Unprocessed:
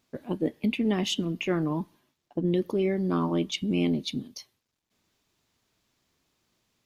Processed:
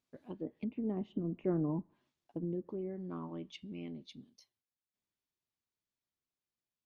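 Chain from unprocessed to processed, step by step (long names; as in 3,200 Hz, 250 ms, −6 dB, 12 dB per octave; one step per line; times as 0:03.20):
source passing by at 0:01.57, 6 m/s, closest 2.8 metres
treble cut that deepens with the level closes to 680 Hz, closed at −29.5 dBFS
level −5 dB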